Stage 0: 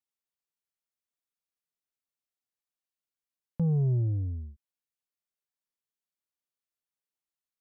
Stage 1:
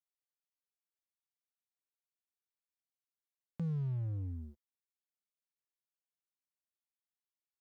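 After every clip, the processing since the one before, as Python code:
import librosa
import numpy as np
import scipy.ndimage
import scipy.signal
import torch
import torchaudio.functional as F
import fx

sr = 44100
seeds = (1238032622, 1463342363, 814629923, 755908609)

y = fx.highpass(x, sr, hz=320.0, slope=6)
y = fx.leveller(y, sr, passes=3)
y = y * librosa.db_to_amplitude(-5.5)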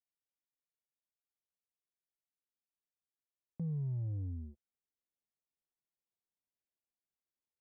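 y = fx.rider(x, sr, range_db=10, speed_s=2.0)
y = scipy.signal.lfilter(np.full(31, 1.0 / 31), 1.0, y)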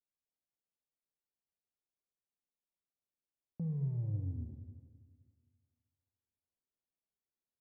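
y = fx.rev_schroeder(x, sr, rt60_s=1.9, comb_ms=29, drr_db=4.5)
y = fx.env_lowpass(y, sr, base_hz=710.0, full_db=-35.5)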